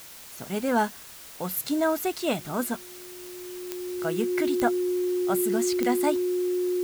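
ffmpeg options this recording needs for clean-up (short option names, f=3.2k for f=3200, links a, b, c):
-af "adeclick=t=4,bandreject=f=360:w=30,afftdn=nr=28:nf=-45"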